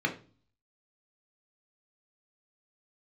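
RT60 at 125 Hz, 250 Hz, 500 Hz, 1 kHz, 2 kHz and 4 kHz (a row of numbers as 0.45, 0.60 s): 0.70, 0.60, 0.40, 0.35, 0.30, 0.35 s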